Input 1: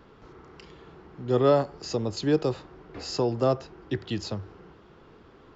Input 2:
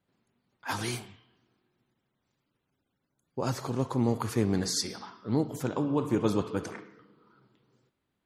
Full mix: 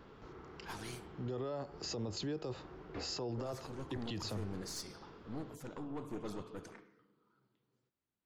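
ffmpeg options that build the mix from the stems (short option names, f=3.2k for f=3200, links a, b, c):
-filter_complex "[0:a]acompressor=threshold=-28dB:ratio=6,volume=-3dB[a];[1:a]acontrast=79,aeval=exprs='(tanh(8.91*val(0)+0.55)-tanh(0.55))/8.91':c=same,volume=-17.5dB[b];[a][b]amix=inputs=2:normalize=0,alimiter=level_in=8dB:limit=-24dB:level=0:latency=1:release=13,volume=-8dB"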